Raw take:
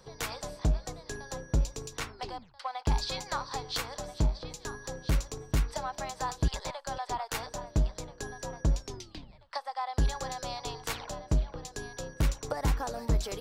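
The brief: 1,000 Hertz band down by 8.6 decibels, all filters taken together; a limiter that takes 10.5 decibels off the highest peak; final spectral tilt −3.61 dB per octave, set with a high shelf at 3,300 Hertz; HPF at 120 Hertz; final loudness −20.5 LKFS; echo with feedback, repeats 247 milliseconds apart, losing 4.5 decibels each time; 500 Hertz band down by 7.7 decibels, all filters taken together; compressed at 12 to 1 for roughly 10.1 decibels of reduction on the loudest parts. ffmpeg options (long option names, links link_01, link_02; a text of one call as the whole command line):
ffmpeg -i in.wav -af "highpass=120,equalizer=frequency=500:width_type=o:gain=-7,equalizer=frequency=1000:width_type=o:gain=-9,highshelf=frequency=3300:gain=4,acompressor=threshold=-39dB:ratio=12,alimiter=level_in=8dB:limit=-24dB:level=0:latency=1,volume=-8dB,aecho=1:1:247|494|741|988|1235|1482|1729|1976|2223:0.596|0.357|0.214|0.129|0.0772|0.0463|0.0278|0.0167|0.01,volume=23.5dB" out.wav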